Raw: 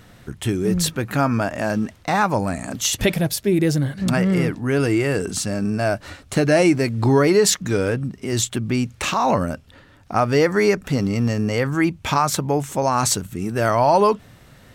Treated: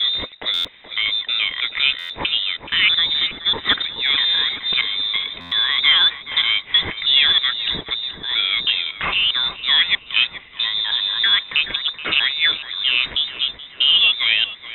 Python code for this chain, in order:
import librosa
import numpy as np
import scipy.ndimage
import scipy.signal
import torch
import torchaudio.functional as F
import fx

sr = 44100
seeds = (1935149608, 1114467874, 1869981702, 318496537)

p1 = fx.block_reorder(x, sr, ms=321.0, group=3)
p2 = scipy.signal.sosfilt(scipy.signal.butter(2, 130.0, 'highpass', fs=sr, output='sos'), p1)
p3 = fx.peak_eq(p2, sr, hz=1700.0, db=8.0, octaves=0.64)
p4 = fx.mod_noise(p3, sr, seeds[0], snr_db=19)
p5 = fx.freq_invert(p4, sr, carrier_hz=3800)
p6 = p5 + fx.echo_filtered(p5, sr, ms=427, feedback_pct=71, hz=1400.0, wet_db=-9, dry=0)
y = fx.buffer_glitch(p6, sr, at_s=(0.53, 1.98, 5.4), block=512, repeats=9)